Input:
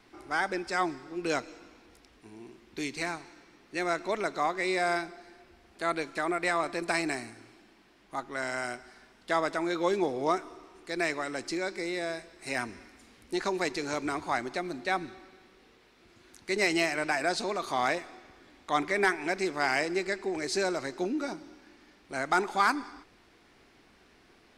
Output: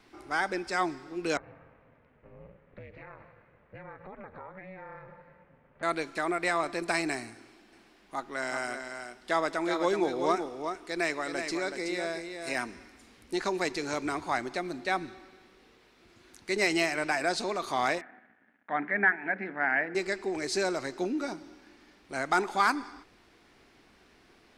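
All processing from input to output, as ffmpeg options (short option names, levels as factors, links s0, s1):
-filter_complex "[0:a]asettb=1/sr,asplit=3[s0][s1][s2];[s0]atrim=end=1.374[s3];[s1]atrim=start=1.37:end=5.83,asetpts=PTS-STARTPTS,afade=t=in:d=0.004:c=qsin,afade=t=out:st=4.456:d=0.004:c=qsin,aeval=exprs='val(0)*sin(2*PI*190*n/s)':c=same,acompressor=threshold=0.00891:ratio=6:attack=3.2:release=140:knee=1:detection=peak,lowpass=f=2100:w=0.5412,lowpass=f=2100:w=1.3066[s4];[s2]atrim=start=5.826[s5];[s3][s4]acrossfade=d=0.004:c1=hsin:c2=qsin[s6];[s6][s5]acrossfade=d=0.004:c1=qsin:c2=hsin,asettb=1/sr,asplit=3[s7][s8][s9];[s7]atrim=end=7.354[s10];[s8]atrim=start=7.35:end=12.76,asetpts=PTS-STARTPTS,afade=t=in:d=0.004:c=qsin,afade=t=out:st=5.406:d=0.004:c=qsin,equalizer=f=100:t=o:w=0.69:g=-10,aecho=1:1:375:0.447,atrim=end_sample=238581[s11];[s9]atrim=start=12.756[s12];[s10][s11]acrossfade=d=0.004:c1=hsin:c2=qsin[s13];[s13][s12]acrossfade=d=0.004:c1=qsin:c2=hsin,asettb=1/sr,asplit=3[s14][s15][s16];[s14]atrim=end=18.014[s17];[s15]atrim=start=18.01:end=19.95,asetpts=PTS-STARTPTS,afade=t=in:d=0.004:c=qsin,afade=t=out:st=1.936:d=0.004:c=qsin,bandreject=f=60:t=h:w=6,bandreject=f=120:t=h:w=6,bandreject=f=180:t=h:w=6,bandreject=f=240:t=h:w=6,bandreject=f=300:t=h:w=6,bandreject=f=360:t=h:w=6,bandreject=f=420:t=h:w=6,bandreject=f=480:t=h:w=6,bandreject=f=540:t=h:w=6,aeval=exprs='sgn(val(0))*max(abs(val(0))-0.0015,0)':c=same,highpass=190,equalizer=f=220:t=q:w=4:g=9,equalizer=f=370:t=q:w=4:g=-10,equalizer=f=520:t=q:w=4:g=-4,equalizer=f=1100:t=q:w=4:g=-10,equalizer=f=1700:t=q:w=4:g=9,lowpass=f=2000:w=0.5412,lowpass=f=2000:w=1.3066[s18];[s16]atrim=start=19.946[s19];[s17][s18]acrossfade=d=0.004:c1=hsin:c2=qsin[s20];[s20][s19]acrossfade=d=0.004:c1=qsin:c2=hsin"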